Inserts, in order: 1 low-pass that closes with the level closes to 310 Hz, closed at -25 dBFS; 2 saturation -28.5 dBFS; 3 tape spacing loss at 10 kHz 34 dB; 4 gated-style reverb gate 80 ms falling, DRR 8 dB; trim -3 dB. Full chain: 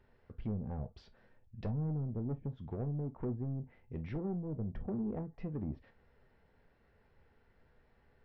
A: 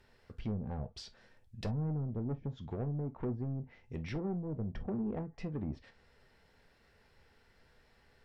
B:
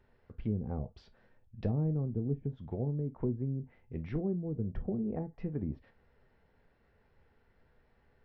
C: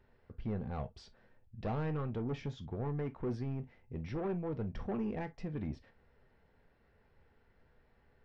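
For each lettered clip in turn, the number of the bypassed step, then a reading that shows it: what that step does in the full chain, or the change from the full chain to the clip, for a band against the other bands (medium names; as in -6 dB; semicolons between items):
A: 3, 2 kHz band +5.5 dB; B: 2, distortion -11 dB; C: 1, 2 kHz band +7.5 dB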